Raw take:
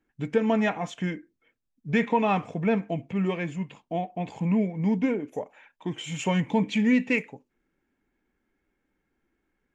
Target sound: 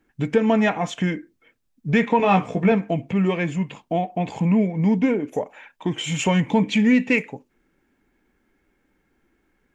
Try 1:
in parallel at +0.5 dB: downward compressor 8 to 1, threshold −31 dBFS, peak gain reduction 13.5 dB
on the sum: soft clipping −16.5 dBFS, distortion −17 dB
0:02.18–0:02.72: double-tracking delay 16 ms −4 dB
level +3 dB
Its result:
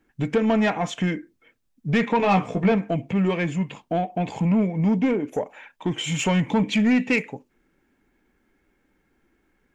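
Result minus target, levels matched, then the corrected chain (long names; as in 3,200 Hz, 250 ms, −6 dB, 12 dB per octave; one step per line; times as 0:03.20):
soft clipping: distortion +19 dB
in parallel at +0.5 dB: downward compressor 8 to 1, threshold −31 dBFS, peak gain reduction 13.5 dB
on the sum: soft clipping −5 dBFS, distortion −36 dB
0:02.18–0:02.72: double-tracking delay 16 ms −4 dB
level +3 dB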